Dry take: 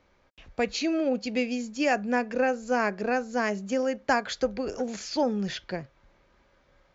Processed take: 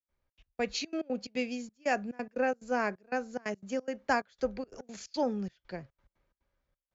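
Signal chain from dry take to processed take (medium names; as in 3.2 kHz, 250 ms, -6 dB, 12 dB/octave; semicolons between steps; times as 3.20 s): trance gate ".xxxx..xxx.x.xx" 178 bpm -24 dB; three bands expanded up and down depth 40%; trim -5.5 dB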